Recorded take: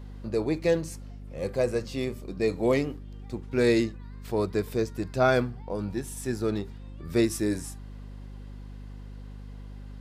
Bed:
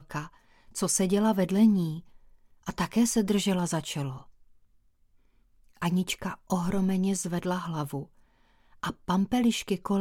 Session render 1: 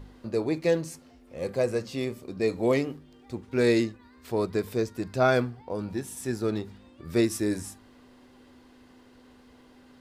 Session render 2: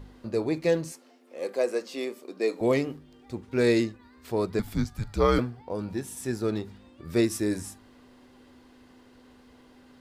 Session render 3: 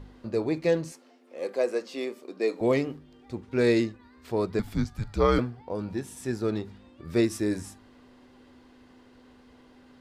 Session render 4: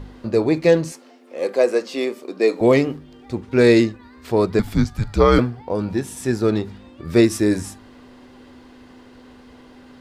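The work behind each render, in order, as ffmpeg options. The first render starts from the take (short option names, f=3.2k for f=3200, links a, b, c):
-af "bandreject=f=50:t=h:w=4,bandreject=f=100:t=h:w=4,bandreject=f=150:t=h:w=4,bandreject=f=200:t=h:w=4"
-filter_complex "[0:a]asettb=1/sr,asplit=3[a][b][c];[a]atrim=end=0.924[d];[b]atrim=start=0.92:end=2.61,asetpts=PTS-STARTPTS,afade=t=in:d=0.004:c=qsin,afade=t=out:st=1.686:d=0.004:c=qsin,highpass=f=280:w=0.5412,highpass=f=280:w=1.3066[e];[c]atrim=start=2.606[f];[d][e]acrossfade=d=0.004:c1=hsin:c2=qsin[g];[g][f]acrossfade=d=0.004:c1=qsin:c2=hsin,asettb=1/sr,asplit=3[h][i][j];[h]atrim=end=4.594[k];[i]atrim=start=4.59:end=5.39,asetpts=PTS-STARTPTS,afade=t=in:d=0.004:c=qsin,afade=t=out:st=0.796:d=0.004:c=qsin,afreqshift=-200[l];[j]atrim=start=5.386[m];[k][l]acrossfade=d=0.004:c1=hsin:c2=qsin[n];[n][m]acrossfade=d=0.004:c1=qsin:c2=hsin"
-af "highshelf=f=8.8k:g=-9.5"
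-af "volume=9.5dB,alimiter=limit=-3dB:level=0:latency=1"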